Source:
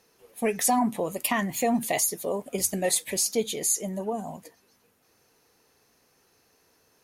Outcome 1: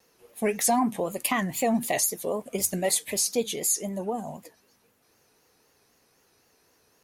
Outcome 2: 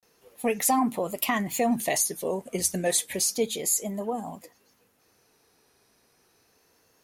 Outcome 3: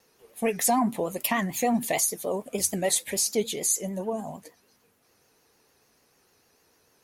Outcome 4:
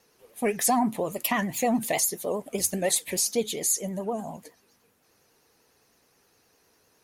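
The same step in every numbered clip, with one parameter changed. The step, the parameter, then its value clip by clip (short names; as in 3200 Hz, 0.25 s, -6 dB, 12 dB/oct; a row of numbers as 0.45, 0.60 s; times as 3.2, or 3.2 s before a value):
vibrato, rate: 3.9, 0.3, 6.7, 9.8 Hz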